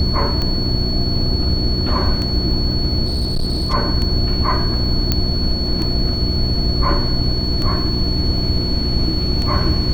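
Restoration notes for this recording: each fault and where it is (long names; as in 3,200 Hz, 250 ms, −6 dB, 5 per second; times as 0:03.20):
mains hum 60 Hz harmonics 6 −22 dBFS
scratch tick 33 1/3 rpm −10 dBFS
whistle 4,400 Hz −23 dBFS
0:03.06–0:03.74: clipping −15 dBFS
0:05.12: click −2 dBFS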